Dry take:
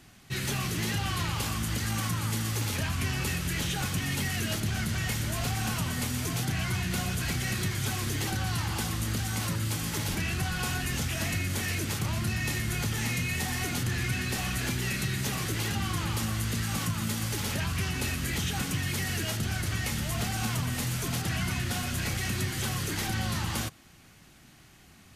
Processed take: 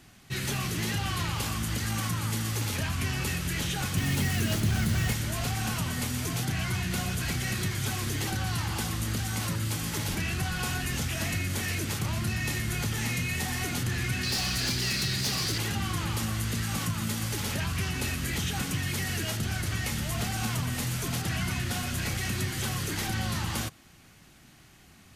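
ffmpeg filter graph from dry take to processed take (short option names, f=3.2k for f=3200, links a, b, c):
-filter_complex "[0:a]asettb=1/sr,asplit=3[a][b][c];[a]atrim=end=3.974[d];[b]atrim=start=3.97:end=5.13,asetpts=PTS-STARTPTS,afade=t=in:d=0.004:c=qsin,afade=t=out:st=1.156:d=0.004:c=qsin,lowshelf=f=500:g=5,acrusher=bits=5:mix=0:aa=0.5[e];[c]atrim=start=5.126[f];[d][e]acrossfade=d=0.004:c1=hsin:c2=qsin[g];[g][f]acrossfade=d=0.004:c1=qsin:c2=hsin,asettb=1/sr,asplit=3[h][i][j];[h]atrim=end=14.234[k];[i]atrim=start=14.23:end=15.58,asetpts=PTS-STARTPTS,afade=t=in:d=0.004:c=qsin,afade=t=out:st=1.346:d=0.004:c=qsin,equalizer=f=4.7k:t=o:w=0.68:g=13.5,asoftclip=type=hard:threshold=-24dB[l];[j]atrim=start=15.576[m];[k][l]acrossfade=d=0.004:c1=hsin:c2=qsin[n];[n][m]acrossfade=d=0.004:c1=qsin:c2=hsin"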